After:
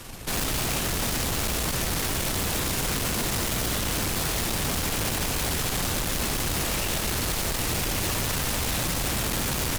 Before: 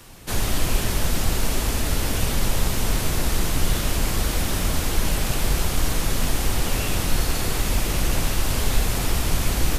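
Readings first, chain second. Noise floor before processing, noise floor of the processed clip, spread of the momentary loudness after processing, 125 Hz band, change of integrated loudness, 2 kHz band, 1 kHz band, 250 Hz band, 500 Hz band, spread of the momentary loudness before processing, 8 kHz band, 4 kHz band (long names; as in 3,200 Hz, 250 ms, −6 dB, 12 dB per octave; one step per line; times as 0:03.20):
−26 dBFS, −28 dBFS, 0 LU, −5.0 dB, −1.5 dB, −0.5 dB, −1.0 dB, −2.5 dB, −2.0 dB, 1 LU, +0.5 dB, 0.0 dB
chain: wrap-around overflow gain 17.5 dB
tube saturation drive 34 dB, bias 0.7
level +8.5 dB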